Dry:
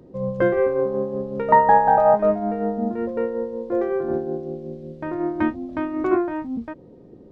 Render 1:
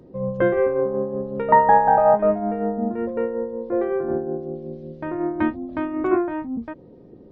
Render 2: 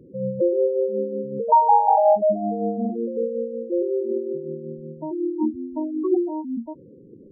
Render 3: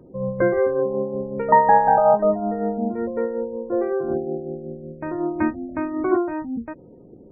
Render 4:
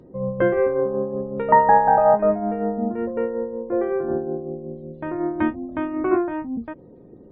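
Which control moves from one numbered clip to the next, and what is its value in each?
gate on every frequency bin, under each frame's peak: −55, −10, −30, −45 decibels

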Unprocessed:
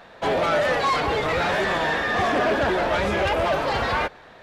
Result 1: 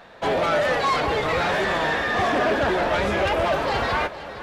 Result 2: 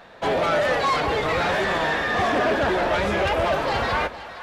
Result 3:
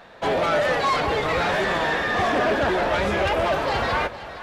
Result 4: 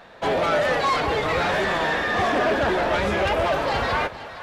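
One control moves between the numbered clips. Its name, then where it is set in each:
echo with a time of its own for lows and highs, lows: 615, 130, 300, 198 milliseconds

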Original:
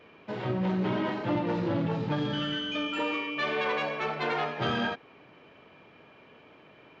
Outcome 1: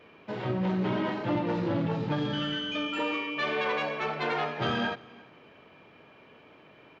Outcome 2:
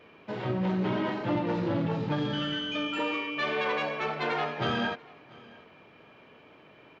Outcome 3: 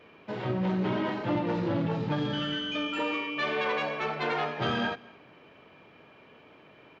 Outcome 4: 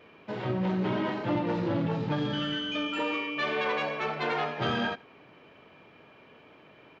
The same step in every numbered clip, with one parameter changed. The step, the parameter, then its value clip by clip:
repeating echo, delay time: 344, 688, 218, 78 milliseconds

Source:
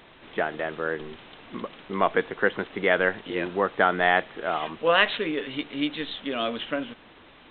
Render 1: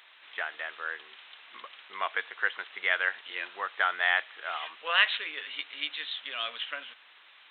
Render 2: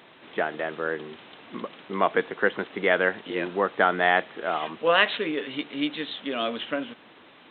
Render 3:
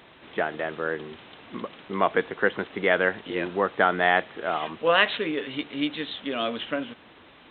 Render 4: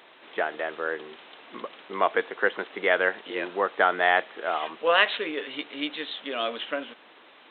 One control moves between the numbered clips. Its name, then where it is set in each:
high-pass filter, corner frequency: 1,500, 150, 57, 390 Hertz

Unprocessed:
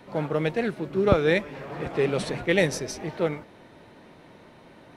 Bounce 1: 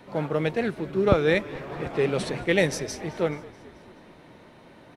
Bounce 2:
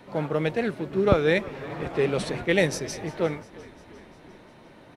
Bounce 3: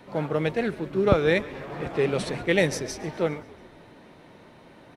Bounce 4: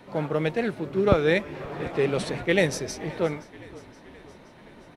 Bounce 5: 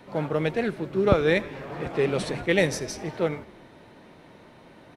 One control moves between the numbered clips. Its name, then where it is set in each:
echo with shifted repeats, delay time: 215, 351, 137, 522, 82 milliseconds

